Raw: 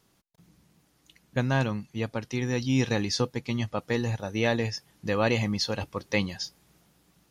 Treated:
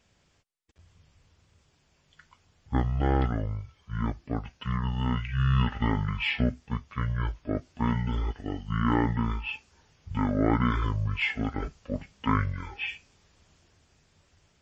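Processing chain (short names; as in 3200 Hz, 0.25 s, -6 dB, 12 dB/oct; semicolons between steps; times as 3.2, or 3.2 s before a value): speed mistake 15 ips tape played at 7.5 ips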